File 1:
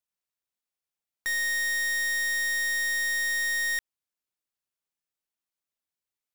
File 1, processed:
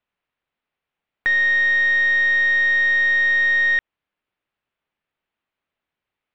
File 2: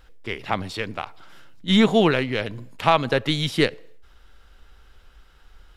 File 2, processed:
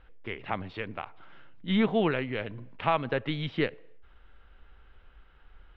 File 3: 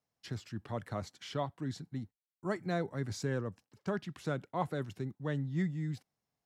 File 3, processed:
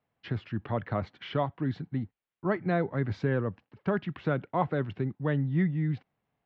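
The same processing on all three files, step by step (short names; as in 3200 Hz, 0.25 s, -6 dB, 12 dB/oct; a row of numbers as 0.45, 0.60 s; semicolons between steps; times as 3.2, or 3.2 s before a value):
LPF 3000 Hz 24 dB/oct; in parallel at -2.5 dB: compressor, threshold -34 dBFS; on the sum: normalise peaks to -12 dBFS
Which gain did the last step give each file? +8.5, -9.0, +3.5 dB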